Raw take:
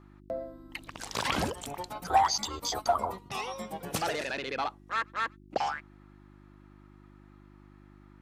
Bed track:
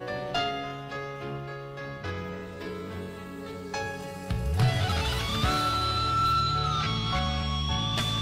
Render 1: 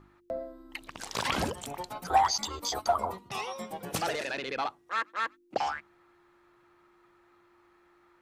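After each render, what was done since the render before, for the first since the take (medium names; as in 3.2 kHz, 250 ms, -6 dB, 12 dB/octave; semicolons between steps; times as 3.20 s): de-hum 50 Hz, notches 6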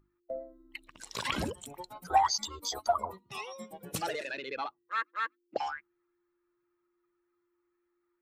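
expander on every frequency bin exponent 1.5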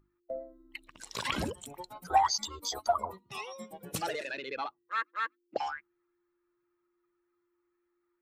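no audible change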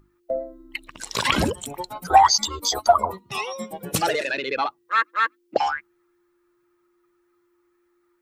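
trim +12 dB; peak limiter -3 dBFS, peak gain reduction 1.5 dB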